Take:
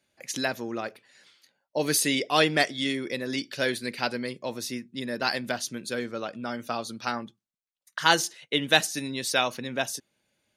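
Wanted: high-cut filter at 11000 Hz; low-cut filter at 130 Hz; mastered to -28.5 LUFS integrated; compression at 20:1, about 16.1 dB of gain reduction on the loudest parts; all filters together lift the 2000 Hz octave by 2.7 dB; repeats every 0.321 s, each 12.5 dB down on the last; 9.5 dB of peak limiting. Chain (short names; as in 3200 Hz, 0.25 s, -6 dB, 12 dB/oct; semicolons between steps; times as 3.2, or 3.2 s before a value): HPF 130 Hz; LPF 11000 Hz; bell 2000 Hz +3.5 dB; compressor 20:1, threshold -28 dBFS; limiter -22.5 dBFS; feedback echo 0.321 s, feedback 24%, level -12.5 dB; gain +7 dB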